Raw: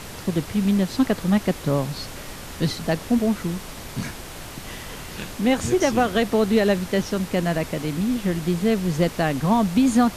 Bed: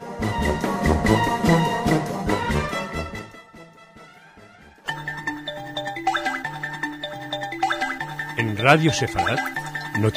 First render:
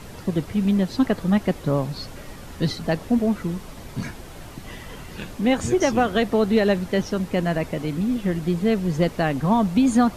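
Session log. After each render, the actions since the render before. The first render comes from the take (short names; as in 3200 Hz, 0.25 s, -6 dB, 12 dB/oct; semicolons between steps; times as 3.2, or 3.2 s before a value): denoiser 8 dB, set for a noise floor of -37 dBFS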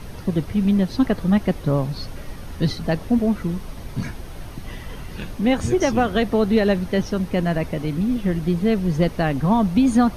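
low shelf 110 Hz +8.5 dB; notch 7400 Hz, Q 5.3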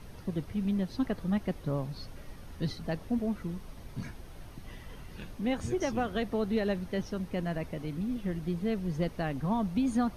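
gain -12 dB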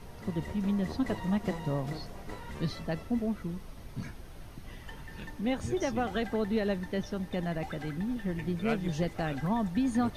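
add bed -21.5 dB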